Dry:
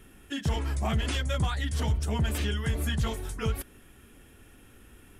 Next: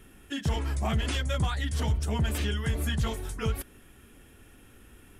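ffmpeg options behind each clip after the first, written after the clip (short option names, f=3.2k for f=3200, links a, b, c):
-af anull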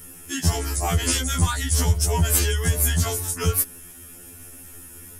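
-af "aexciter=amount=2.8:drive=8.4:freq=4.8k,afftfilt=real='re*2*eq(mod(b,4),0)':imag='im*2*eq(mod(b,4),0)':win_size=2048:overlap=0.75,volume=8.5dB"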